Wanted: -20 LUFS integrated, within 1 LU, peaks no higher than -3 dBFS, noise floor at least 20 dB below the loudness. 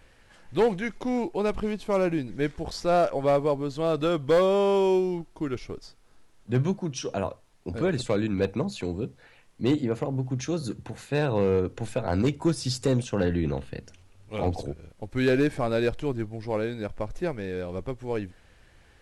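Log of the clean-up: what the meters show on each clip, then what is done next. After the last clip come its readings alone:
clipped samples 0.5%; clipping level -15.5 dBFS; loudness -27.5 LUFS; peak level -15.5 dBFS; loudness target -20.0 LUFS
-> clip repair -15.5 dBFS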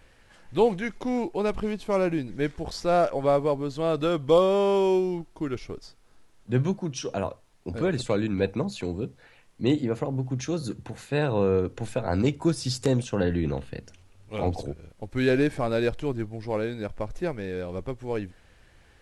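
clipped samples 0.0%; loudness -27.0 LUFS; peak level -8.0 dBFS; loudness target -20.0 LUFS
-> trim +7 dB; peak limiter -3 dBFS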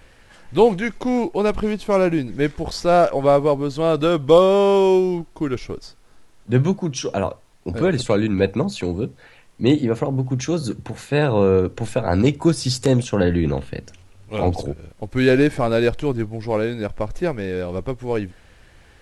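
loudness -20.0 LUFS; peak level -3.0 dBFS; noise floor -50 dBFS

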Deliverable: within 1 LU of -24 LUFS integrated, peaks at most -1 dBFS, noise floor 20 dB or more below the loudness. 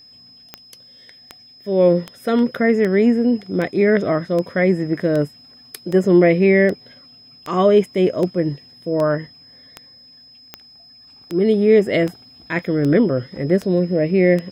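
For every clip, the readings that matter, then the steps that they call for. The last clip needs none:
clicks found 19; steady tone 5.1 kHz; tone level -44 dBFS; loudness -18.0 LUFS; peak level -2.5 dBFS; loudness target -24.0 LUFS
-> de-click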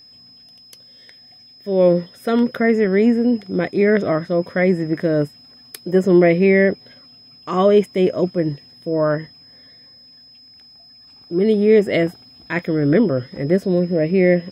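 clicks found 1; steady tone 5.1 kHz; tone level -44 dBFS
-> band-stop 5.1 kHz, Q 30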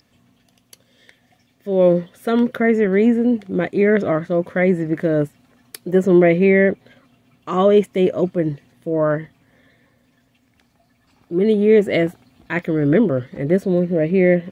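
steady tone not found; loudness -18.0 LUFS; peak level -2.5 dBFS; loudness target -24.0 LUFS
-> trim -6 dB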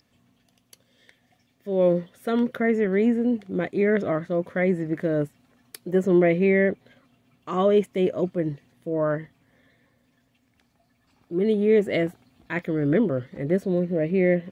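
loudness -24.0 LUFS; peak level -8.5 dBFS; noise floor -67 dBFS

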